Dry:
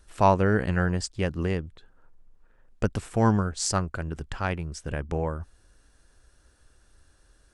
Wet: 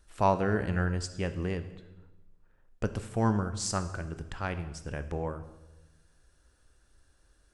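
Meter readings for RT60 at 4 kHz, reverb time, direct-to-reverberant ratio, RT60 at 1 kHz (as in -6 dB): 0.95 s, 1.1 s, 10.0 dB, 1.0 s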